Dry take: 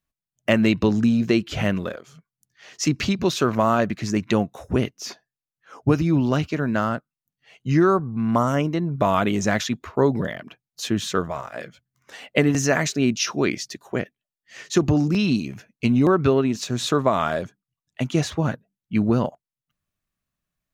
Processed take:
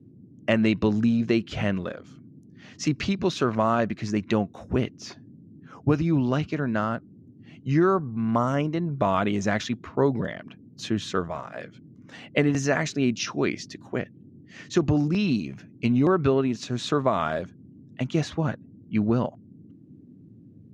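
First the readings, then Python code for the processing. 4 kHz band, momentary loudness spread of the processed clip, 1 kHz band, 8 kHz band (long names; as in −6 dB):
−5.0 dB, 13 LU, −3.5 dB, −8.5 dB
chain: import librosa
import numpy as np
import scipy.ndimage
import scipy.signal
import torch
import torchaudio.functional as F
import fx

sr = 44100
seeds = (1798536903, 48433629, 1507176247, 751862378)

y = fx.dmg_noise_band(x, sr, seeds[0], low_hz=96.0, high_hz=300.0, level_db=-46.0)
y = fx.air_absorb(y, sr, metres=76.0)
y = F.gain(torch.from_numpy(y), -3.0).numpy()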